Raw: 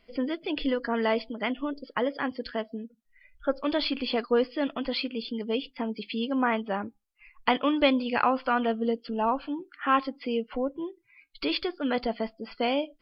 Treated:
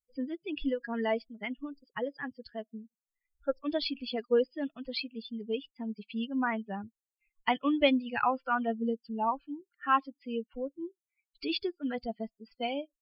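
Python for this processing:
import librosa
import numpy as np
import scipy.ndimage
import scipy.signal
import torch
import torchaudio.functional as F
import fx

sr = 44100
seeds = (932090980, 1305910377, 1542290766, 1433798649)

y = fx.bin_expand(x, sr, power=2.0)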